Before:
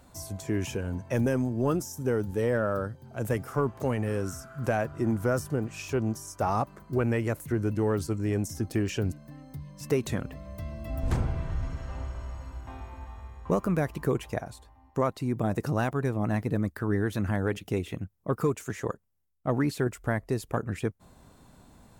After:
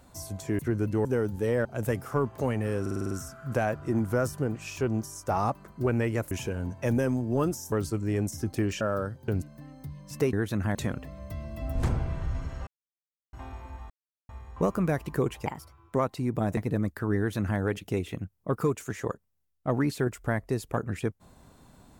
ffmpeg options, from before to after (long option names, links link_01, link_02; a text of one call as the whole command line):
ffmpeg -i in.wav -filter_complex "[0:a]asplit=22[link_01][link_02][link_03][link_04][link_05][link_06][link_07][link_08][link_09][link_10][link_11][link_12][link_13][link_14][link_15][link_16][link_17][link_18][link_19][link_20][link_21][link_22];[link_01]atrim=end=0.592[link_23];[link_02]atrim=start=7.428:end=7.892[link_24];[link_03]atrim=start=1.998:end=2.602[link_25];[link_04]atrim=start=3.068:end=4.282[link_26];[link_05]atrim=start=4.228:end=4.282[link_27];[link_06]atrim=start=4.228:end=4.282[link_28];[link_07]atrim=start=4.228:end=4.282[link_29];[link_08]atrim=start=4.228:end=4.282[link_30];[link_09]atrim=start=4.228:end=4.282[link_31];[link_10]atrim=start=4.228:end=7.432[link_32];[link_11]atrim=start=0.588:end=2.002[link_33];[link_12]atrim=start=7.888:end=8.982[link_34];[link_13]atrim=start=2.598:end=3.072[link_35];[link_14]atrim=start=8.978:end=10.032[link_36];[link_15]atrim=start=16.968:end=17.392[link_37];[link_16]atrim=start=10.028:end=11.95,asetpts=PTS-STARTPTS,afade=type=out:start_time=1.918:duration=0.004:curve=hsin[link_38];[link_17]atrim=start=11.95:end=12.61,asetpts=PTS-STARTPTS,volume=0[link_39];[link_18]atrim=start=12.61:end=13.18,asetpts=PTS-STARTPTS,afade=type=in:duration=0.004:curve=hsin,afade=type=out:start_time=0.566:duration=0.004:curve=hsin,apad=pad_dur=0.39[link_40];[link_19]atrim=start=13.18:end=14.354,asetpts=PTS-STARTPTS,afade=type=in:duration=0.004:curve=hsin[link_41];[link_20]atrim=start=14.35:end=14.98,asetpts=PTS-STARTPTS,asetrate=56448,aresample=44100,atrim=end_sample=21705,asetpts=PTS-STARTPTS[link_42];[link_21]atrim=start=14.976:end=15.602[link_43];[link_22]atrim=start=16.368[link_44];[link_23][link_24]acrossfade=duration=0.004:curve1=hsin:curve2=hsin[link_45];[link_45][link_25]acrossfade=duration=0.004:curve1=hsin:curve2=hsin[link_46];[link_46][link_26]acrossfade=duration=0.004:curve1=hsin:curve2=hsin[link_47];[link_47][link_27]acrossfade=duration=0.004:curve1=hsin:curve2=hsin[link_48];[link_48][link_28]acrossfade=duration=0.004:curve1=hsin:curve2=hsin[link_49];[link_49][link_29]acrossfade=duration=0.004:curve1=hsin:curve2=hsin[link_50];[link_50][link_30]acrossfade=duration=0.004:curve1=hsin:curve2=hsin[link_51];[link_51][link_31]acrossfade=duration=0.004:curve1=hsin:curve2=hsin[link_52];[link_52][link_32]acrossfade=duration=0.004:curve1=hsin:curve2=hsin[link_53];[link_53][link_33]acrossfade=duration=0.004:curve1=hsin:curve2=hsin[link_54];[link_54][link_34]acrossfade=duration=0.004:curve1=hsin:curve2=hsin[link_55];[link_55][link_35]acrossfade=duration=0.004:curve1=hsin:curve2=hsin[link_56];[link_56][link_36]acrossfade=duration=0.004:curve1=hsin:curve2=hsin[link_57];[link_57][link_37]acrossfade=duration=0.004:curve1=hsin:curve2=hsin[link_58];[link_38][link_39][link_40][link_41]concat=n=4:v=0:a=1[link_59];[link_58][link_59]acrossfade=duration=0.004:curve1=hsin:curve2=hsin[link_60];[link_60][link_42]acrossfade=duration=0.004:curve1=hsin:curve2=hsin[link_61];[link_61][link_43]acrossfade=duration=0.004:curve1=hsin:curve2=hsin[link_62];[link_62][link_44]acrossfade=duration=0.004:curve1=hsin:curve2=hsin" out.wav